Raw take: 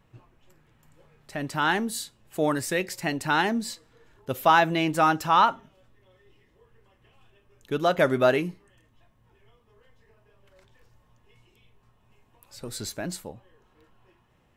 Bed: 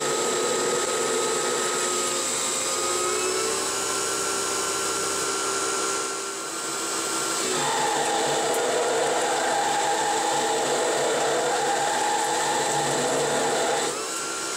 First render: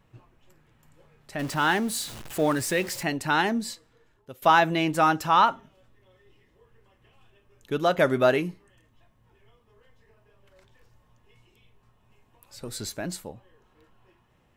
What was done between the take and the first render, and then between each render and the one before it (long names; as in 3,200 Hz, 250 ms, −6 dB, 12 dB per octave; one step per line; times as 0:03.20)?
0:01.39–0:03.03: converter with a step at zero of −35 dBFS
0:03.65–0:04.42: fade out linear, to −20 dB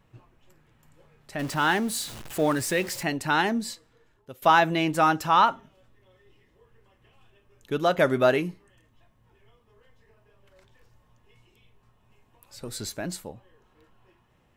no processing that can be heard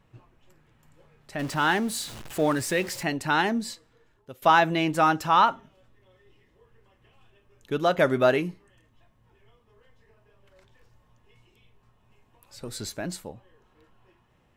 high-shelf EQ 10,000 Hz −4.5 dB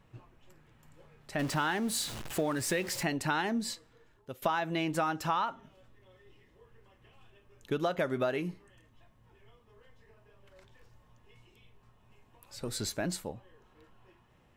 downward compressor 10 to 1, threshold −27 dBFS, peak gain reduction 13.5 dB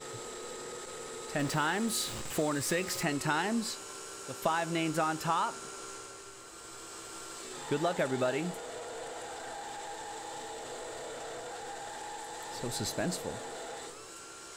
mix in bed −18.5 dB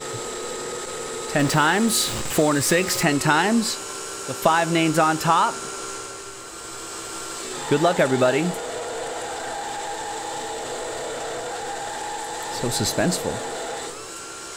level +12 dB